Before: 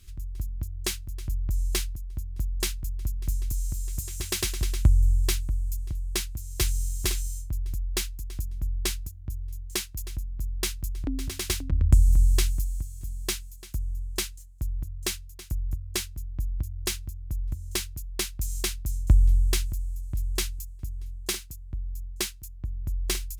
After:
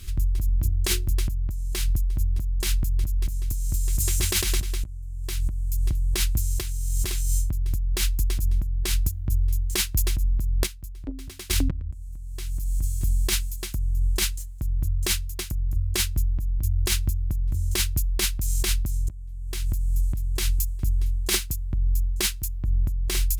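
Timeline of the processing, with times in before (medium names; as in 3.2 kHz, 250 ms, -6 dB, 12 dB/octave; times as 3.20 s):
0.49–1.15 s: hum notches 60/120/180/240/300/360/420/480 Hz
10.63–11.53 s: gate -25 dBFS, range -19 dB
whole clip: peaking EQ 6.3 kHz -2 dB 0.77 oct; compressor with a negative ratio -32 dBFS, ratio -1; trim +8 dB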